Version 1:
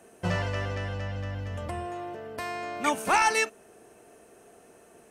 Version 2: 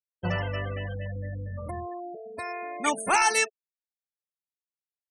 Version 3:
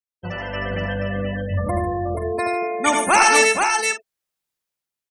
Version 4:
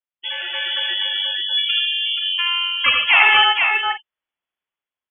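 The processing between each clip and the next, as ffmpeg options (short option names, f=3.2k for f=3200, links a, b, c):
-af "aemphasis=mode=production:type=cd,afftfilt=real='re*gte(hypot(re,im),0.0355)':imag='im*gte(hypot(re,im),0.0355)':win_size=1024:overlap=0.75"
-filter_complex "[0:a]dynaudnorm=f=160:g=7:m=15dB,asplit=2[a][b];[b]aecho=0:1:77|86|104|147|480|526:0.447|0.422|0.15|0.224|0.596|0.224[c];[a][c]amix=inputs=2:normalize=0,volume=-3.5dB"
-af "lowpass=f=3k:t=q:w=0.5098,lowpass=f=3k:t=q:w=0.6013,lowpass=f=3k:t=q:w=0.9,lowpass=f=3k:t=q:w=2.563,afreqshift=-3500,volume=2dB"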